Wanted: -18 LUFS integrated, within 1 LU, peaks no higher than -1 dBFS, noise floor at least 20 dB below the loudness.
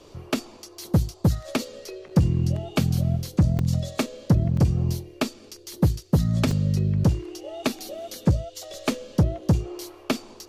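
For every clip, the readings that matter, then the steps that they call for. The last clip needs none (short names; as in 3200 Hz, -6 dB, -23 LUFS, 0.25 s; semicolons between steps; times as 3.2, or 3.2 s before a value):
dropouts 3; longest dropout 2.8 ms; loudness -25.0 LUFS; peak -9.0 dBFS; loudness target -18.0 LUFS
-> interpolate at 3.59/4.57/6.51, 2.8 ms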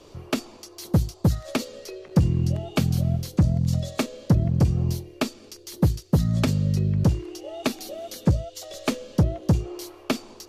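dropouts 0; loudness -25.0 LUFS; peak -9.0 dBFS; loudness target -18.0 LUFS
-> gain +7 dB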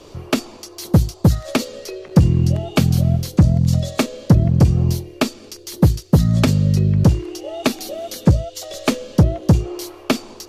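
loudness -18.0 LUFS; peak -2.0 dBFS; noise floor -42 dBFS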